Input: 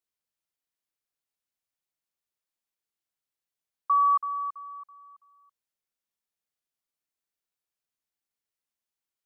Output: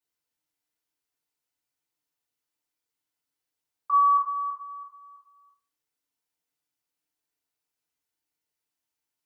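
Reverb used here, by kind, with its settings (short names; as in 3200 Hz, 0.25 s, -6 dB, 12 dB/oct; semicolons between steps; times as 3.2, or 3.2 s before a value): FDN reverb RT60 0.36 s, low-frequency decay 1×, high-frequency decay 0.9×, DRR -8.5 dB; gain -5.5 dB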